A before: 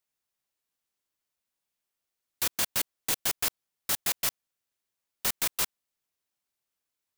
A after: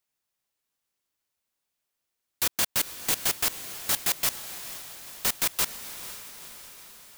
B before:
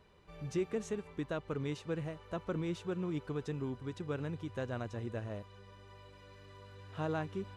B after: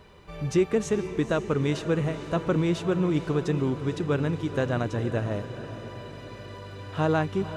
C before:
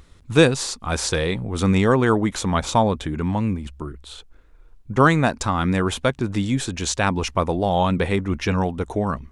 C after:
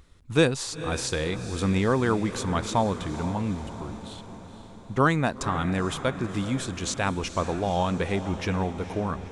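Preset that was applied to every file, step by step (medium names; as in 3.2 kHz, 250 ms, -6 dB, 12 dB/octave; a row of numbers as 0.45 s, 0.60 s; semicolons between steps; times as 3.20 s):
echo that smears into a reverb 479 ms, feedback 59%, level -12 dB; normalise loudness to -27 LUFS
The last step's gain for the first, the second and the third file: +2.5 dB, +12.0 dB, -6.0 dB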